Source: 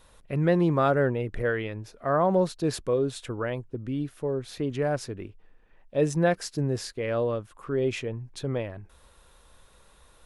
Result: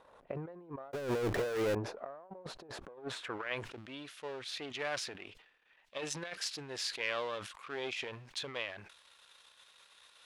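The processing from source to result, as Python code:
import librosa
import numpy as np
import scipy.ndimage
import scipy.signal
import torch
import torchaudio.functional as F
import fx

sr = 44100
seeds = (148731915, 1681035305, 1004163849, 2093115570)

y = np.where(x < 0.0, 10.0 ** (-7.0 / 20.0) * x, x)
y = fx.filter_sweep_bandpass(y, sr, from_hz=690.0, to_hz=3300.0, start_s=2.73, end_s=3.79, q=1.1)
y = fx.over_compress(y, sr, threshold_db=-42.0, ratio=-0.5)
y = fx.power_curve(y, sr, exponent=0.35, at=(0.93, 1.75))
y = fx.sustainer(y, sr, db_per_s=72.0)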